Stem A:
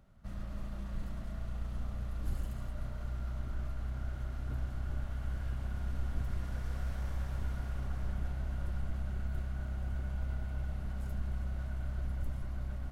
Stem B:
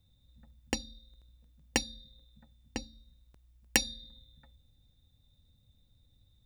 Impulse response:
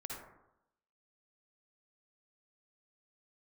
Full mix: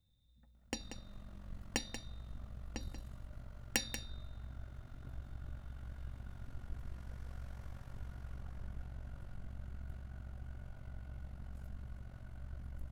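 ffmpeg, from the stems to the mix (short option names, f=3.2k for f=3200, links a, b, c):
-filter_complex "[0:a]tremolo=f=46:d=0.75,adelay=550,volume=-2.5dB[a];[1:a]volume=-3.5dB,asplit=2[b][c];[c]volume=-9.5dB,aecho=0:1:185:1[d];[a][b][d]amix=inputs=3:normalize=0,flanger=delay=5.6:depth=4.1:regen=-84:speed=0.35:shape=triangular"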